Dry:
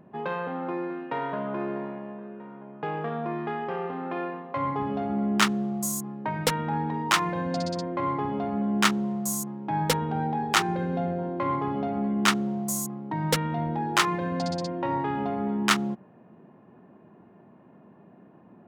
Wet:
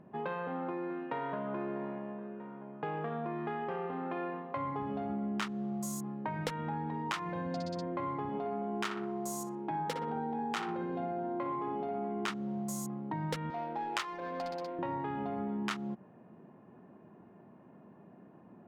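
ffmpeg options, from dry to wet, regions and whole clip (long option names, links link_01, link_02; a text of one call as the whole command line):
ffmpeg -i in.wav -filter_complex "[0:a]asettb=1/sr,asplit=3[link_01][link_02][link_03];[link_01]atrim=end=8.294[link_04];[link_02]atrim=start=8.29:end=12.3,asetpts=PTS-STARTPTS,afade=type=in:duration=0.004:curve=qsin,afade=type=out:start_time=4.006:duration=0.004:curve=qsin,highpass=140,asplit=2[link_05][link_06];[link_06]adelay=60,lowpass=frequency=1700:poles=1,volume=-4dB,asplit=2[link_07][link_08];[link_08]adelay=60,lowpass=frequency=1700:poles=1,volume=0.55,asplit=2[link_09][link_10];[link_10]adelay=60,lowpass=frequency=1700:poles=1,volume=0.55,asplit=2[link_11][link_12];[link_12]adelay=60,lowpass=frequency=1700:poles=1,volume=0.55,asplit=2[link_13][link_14];[link_14]adelay=60,lowpass=frequency=1700:poles=1,volume=0.55,asplit=2[link_15][link_16];[link_16]adelay=60,lowpass=frequency=1700:poles=1,volume=0.55,asplit=2[link_17][link_18];[link_18]adelay=60,lowpass=frequency=1700:poles=1,volume=0.55[link_19];[link_05][link_07][link_09][link_11][link_13][link_15][link_17][link_19]amix=inputs=8:normalize=0,atrim=end_sample=176841[link_20];[link_03]atrim=start=12.296[link_21];[link_04][link_20]acrossfade=duration=0.004:curve1=hsin:curve2=qsin[link_22];[link_22][link_21]acrossfade=duration=0.004:curve1=qsin:curve2=hsin,asettb=1/sr,asplit=3[link_23][link_24][link_25];[link_23]atrim=end=13.504[link_26];[link_24]atrim=start=13.5:end=14.79,asetpts=PTS-STARTPTS,afade=type=in:duration=0.004:curve=qsin,afade=type=out:start_time=1.286:duration=0.004:curve=qsin,highpass=430,highshelf=frequency=3800:gain=8.5,adynamicsmooth=sensitivity=3.5:basefreq=920[link_27];[link_25]atrim=start=14.786[link_28];[link_26][link_27]acrossfade=duration=0.004:curve1=hsin:curve2=qsin[link_29];[link_29][link_28]acrossfade=duration=0.004:curve1=qsin:curve2=hsin,highshelf=frequency=6800:gain=-11.5,acompressor=threshold=-30dB:ratio=6,volume=-3dB" out.wav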